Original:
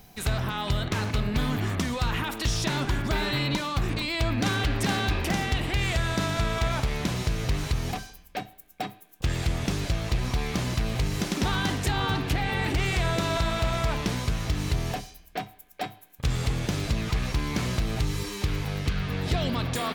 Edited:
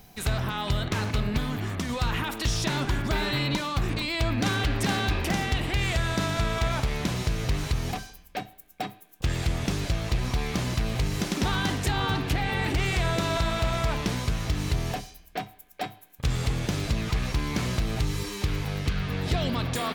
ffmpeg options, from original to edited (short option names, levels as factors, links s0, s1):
-filter_complex "[0:a]asplit=3[s0][s1][s2];[s0]atrim=end=1.382[s3];[s1]atrim=start=1.378:end=1.892,asetpts=PTS-STARTPTS,volume=0.708[s4];[s2]atrim=start=1.888[s5];[s3][s4]acrossfade=d=0.004:c1=hsin:c2=hsin[s6];[s6][s5]acrossfade=d=0.004:c1=hsin:c2=hsin"